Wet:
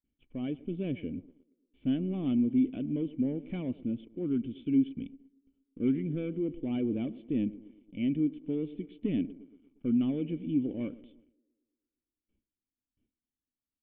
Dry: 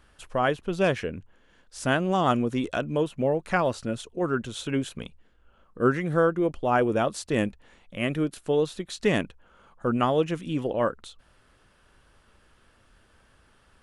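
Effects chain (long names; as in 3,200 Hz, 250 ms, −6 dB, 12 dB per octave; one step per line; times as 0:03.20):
high-shelf EQ 2,600 Hz −10 dB
noise gate with hold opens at −49 dBFS
automatic gain control gain up to 3.5 dB
feedback echo with a band-pass in the loop 116 ms, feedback 67%, band-pass 360 Hz, level −18 dB
leveller curve on the samples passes 2
formant resonators in series i
level −6 dB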